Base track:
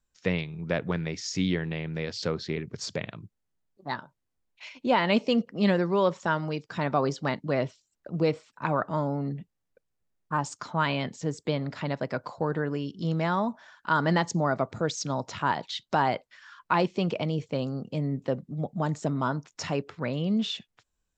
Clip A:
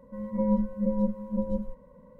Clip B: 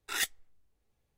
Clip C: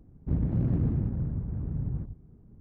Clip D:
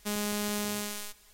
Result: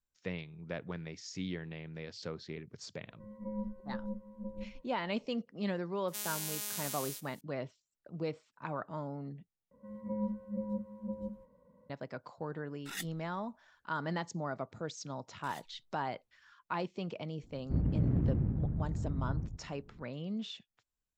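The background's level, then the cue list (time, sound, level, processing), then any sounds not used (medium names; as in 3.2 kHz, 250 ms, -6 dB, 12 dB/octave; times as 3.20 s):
base track -12 dB
3.07 s: add A -14 dB + band-stop 880 Hz, Q 21
6.08 s: add D -14 dB + tilt EQ +4 dB/octave
9.71 s: replace with A -10.5 dB + high-pass 65 Hz
12.77 s: add B -10 dB
15.35 s: add B -9.5 dB + compression, threshold -41 dBFS
17.43 s: add C -3.5 dB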